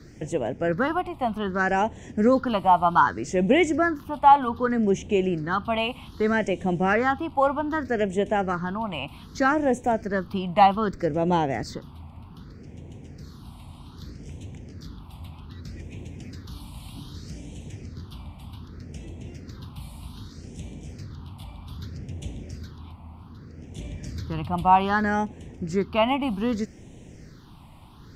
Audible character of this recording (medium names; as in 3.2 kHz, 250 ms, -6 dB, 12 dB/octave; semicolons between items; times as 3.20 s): phasing stages 6, 0.64 Hz, lowest notch 430–1300 Hz